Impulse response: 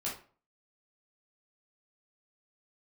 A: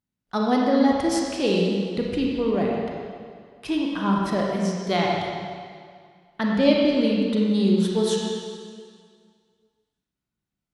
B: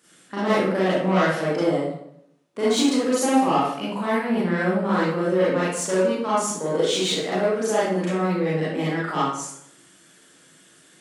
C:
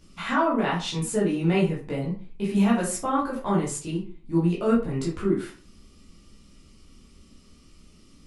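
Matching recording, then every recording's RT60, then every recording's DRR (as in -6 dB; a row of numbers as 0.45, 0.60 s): C; 2.0, 0.70, 0.40 s; -2.5, -9.5, -6.0 dB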